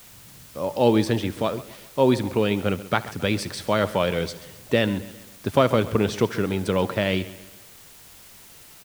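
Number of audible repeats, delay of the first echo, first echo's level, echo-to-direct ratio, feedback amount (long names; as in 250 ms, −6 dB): 4, 73 ms, −20.5 dB, −14.5 dB, repeats not evenly spaced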